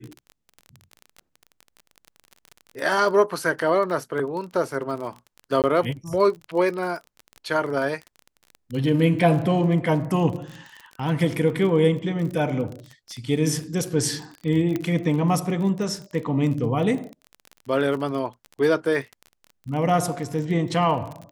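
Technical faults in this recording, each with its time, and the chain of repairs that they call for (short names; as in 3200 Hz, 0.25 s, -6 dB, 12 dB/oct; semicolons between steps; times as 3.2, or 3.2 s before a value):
crackle 27/s -30 dBFS
5.62–5.64 gap 18 ms
14.76 pop -13 dBFS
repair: de-click; interpolate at 5.62, 18 ms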